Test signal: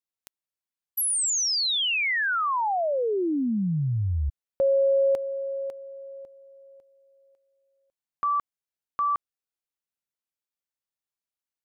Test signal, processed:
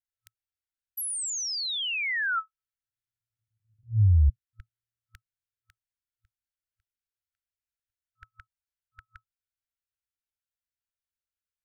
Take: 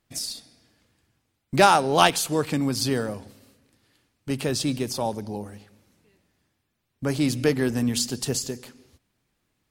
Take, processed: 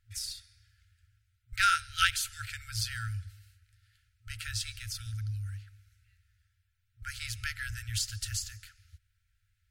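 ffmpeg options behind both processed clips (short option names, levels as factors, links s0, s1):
-af "tiltshelf=f=1100:g=7,afftfilt=real='re*(1-between(b*sr/4096,110,1300))':imag='im*(1-between(b*sr/4096,110,1300))':win_size=4096:overlap=0.75"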